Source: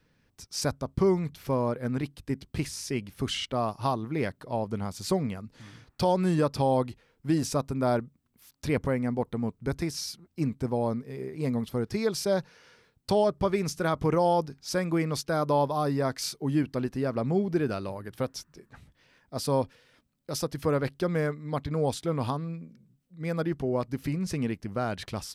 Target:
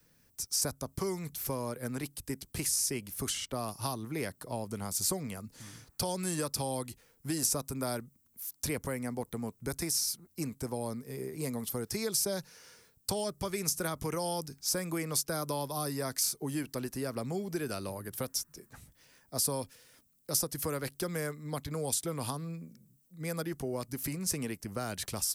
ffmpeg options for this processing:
ffmpeg -i in.wav -filter_complex "[0:a]acrossover=split=400|1600[link_01][link_02][link_03];[link_01]acompressor=threshold=-35dB:ratio=4[link_04];[link_02]acompressor=threshold=-36dB:ratio=4[link_05];[link_03]acompressor=threshold=-38dB:ratio=4[link_06];[link_04][link_05][link_06]amix=inputs=3:normalize=0,acrossover=split=330|5200[link_07][link_08][link_09];[link_09]crystalizer=i=5.5:c=0[link_10];[link_07][link_08][link_10]amix=inputs=3:normalize=0,volume=-2dB" out.wav

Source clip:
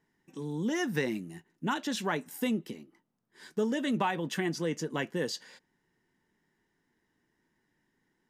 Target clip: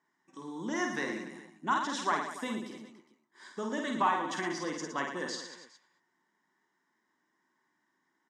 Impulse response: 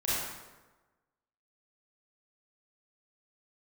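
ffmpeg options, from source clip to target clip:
-filter_complex "[0:a]highpass=320,equalizer=frequency=460:width_type=q:width=4:gain=-10,equalizer=frequency=1100:width_type=q:width=4:gain=9,equalizer=frequency=2700:width_type=q:width=4:gain=-8,equalizer=frequency=4400:width_type=q:width=4:gain=-4,lowpass=frequency=8100:width=0.5412,lowpass=frequency=8100:width=1.3066,asplit=2[link_01][link_02];[link_02]aecho=0:1:50|112.5|190.6|288.3|410.4:0.631|0.398|0.251|0.158|0.1[link_03];[link_01][link_03]amix=inputs=2:normalize=0,volume=-1dB"

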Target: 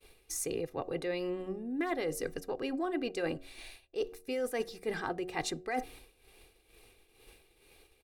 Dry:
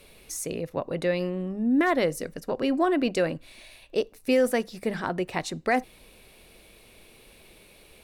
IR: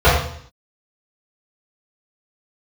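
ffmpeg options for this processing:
-af "tremolo=f=2.2:d=0.39,agate=range=-33dB:threshold=-47dB:ratio=3:detection=peak,aecho=1:1:2.5:0.58,areverse,acompressor=threshold=-31dB:ratio=6,areverse,bandreject=frequency=91.64:width_type=h:width=4,bandreject=frequency=183.28:width_type=h:width=4,bandreject=frequency=274.92:width_type=h:width=4,bandreject=frequency=366.56:width_type=h:width=4,bandreject=frequency=458.2:width_type=h:width=4,bandreject=frequency=549.84:width_type=h:width=4,bandreject=frequency=641.48:width_type=h:width=4,bandreject=frequency=733.12:width_type=h:width=4"

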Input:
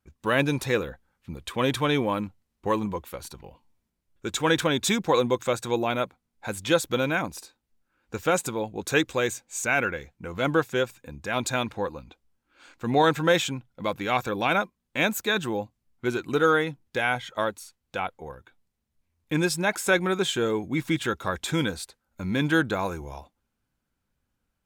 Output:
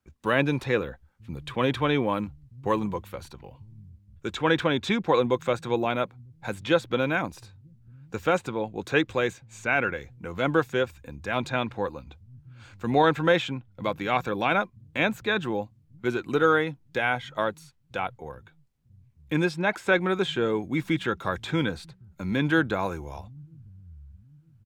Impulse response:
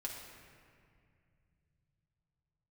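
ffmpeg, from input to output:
-filter_complex "[0:a]equalizer=frequency=12000:width=0.57:gain=-3,acrossover=split=110|1100|4000[link_01][link_02][link_03][link_04];[link_01]aecho=1:1:949|1898|2847|3796|4745:0.708|0.248|0.0867|0.0304|0.0106[link_05];[link_04]acompressor=threshold=-52dB:ratio=6[link_06];[link_05][link_02][link_03][link_06]amix=inputs=4:normalize=0"

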